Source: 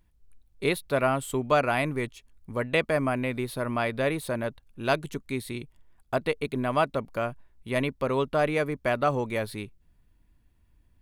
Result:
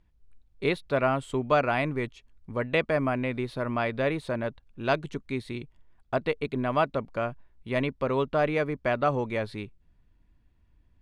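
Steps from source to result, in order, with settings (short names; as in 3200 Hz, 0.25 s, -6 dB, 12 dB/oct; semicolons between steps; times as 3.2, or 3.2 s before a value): air absorption 100 m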